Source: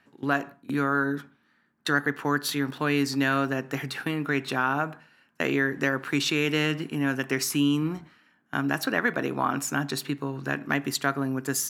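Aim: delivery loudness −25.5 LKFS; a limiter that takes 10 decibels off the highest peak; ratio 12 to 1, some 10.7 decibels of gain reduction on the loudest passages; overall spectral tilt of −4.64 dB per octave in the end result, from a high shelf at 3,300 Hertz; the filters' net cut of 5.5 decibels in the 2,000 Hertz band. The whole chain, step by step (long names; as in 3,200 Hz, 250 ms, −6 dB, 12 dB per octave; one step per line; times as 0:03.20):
parametric band 2,000 Hz −6 dB
high-shelf EQ 3,300 Hz −5 dB
downward compressor 12 to 1, threshold −31 dBFS
level +12.5 dB
brickwall limiter −13 dBFS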